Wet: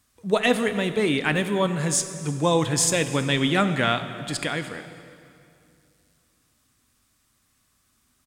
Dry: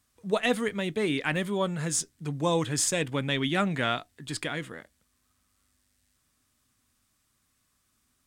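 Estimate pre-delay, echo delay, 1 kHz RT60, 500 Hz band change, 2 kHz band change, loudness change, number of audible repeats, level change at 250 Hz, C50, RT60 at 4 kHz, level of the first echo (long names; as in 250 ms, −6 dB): 26 ms, 320 ms, 2.4 s, +5.5 dB, +5.5 dB, +5.5 dB, 1, +5.5 dB, 10.5 dB, 2.0 s, −22.5 dB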